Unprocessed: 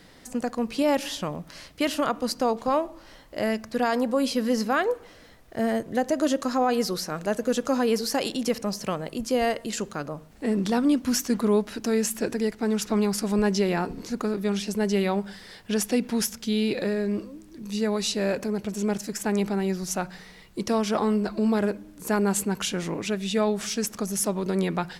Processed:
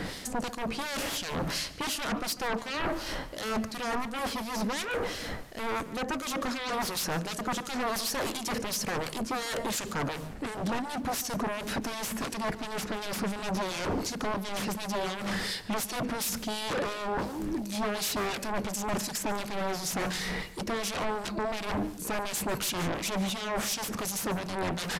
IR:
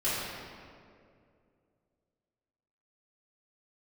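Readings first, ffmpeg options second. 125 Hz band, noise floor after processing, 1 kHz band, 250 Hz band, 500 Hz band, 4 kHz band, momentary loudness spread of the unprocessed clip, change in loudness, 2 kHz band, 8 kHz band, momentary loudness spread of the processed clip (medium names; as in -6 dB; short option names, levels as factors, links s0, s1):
-5.0 dB, -41 dBFS, -2.5 dB, -9.0 dB, -8.5 dB, -0.5 dB, 8 LU, -6.0 dB, 0.0 dB, -2.0 dB, 4 LU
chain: -filter_complex "[0:a]areverse,acompressor=threshold=0.0158:ratio=8,areverse,aeval=exprs='0.0631*sin(PI/2*7.08*val(0)/0.0631)':c=same,acrossover=split=2400[s0][s1];[s0]aeval=exprs='val(0)*(1-0.7/2+0.7/2*cos(2*PI*2.8*n/s))':c=same[s2];[s1]aeval=exprs='val(0)*(1-0.7/2-0.7/2*cos(2*PI*2.8*n/s))':c=same[s3];[s2][s3]amix=inputs=2:normalize=0,asplit=2[s4][s5];[s5]adelay=145.8,volume=0.141,highshelf=f=4000:g=-3.28[s6];[s4][s6]amix=inputs=2:normalize=0,aresample=32000,aresample=44100,volume=0.841"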